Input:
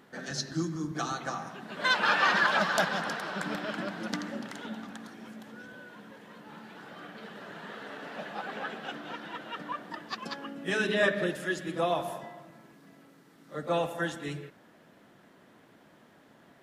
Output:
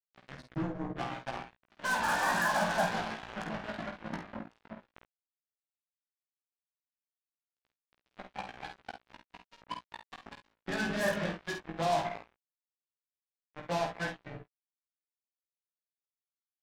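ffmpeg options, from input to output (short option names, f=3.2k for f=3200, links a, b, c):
-filter_complex "[0:a]lowpass=1.2k,aecho=1:1:1.2:0.6,acrusher=bits=4:mix=0:aa=0.5,flanger=delay=15.5:depth=3.1:speed=0.13,asplit=2[a][b];[b]aecho=0:1:50|66:0.473|0.133[c];[a][c]amix=inputs=2:normalize=0"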